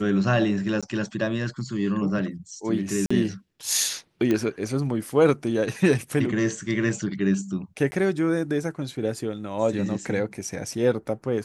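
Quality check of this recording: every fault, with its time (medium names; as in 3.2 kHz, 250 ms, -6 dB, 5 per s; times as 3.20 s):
0.81–0.83 s: dropout 16 ms
3.06–3.10 s: dropout 45 ms
4.31 s: pop -12 dBFS
7.91–7.92 s: dropout 10 ms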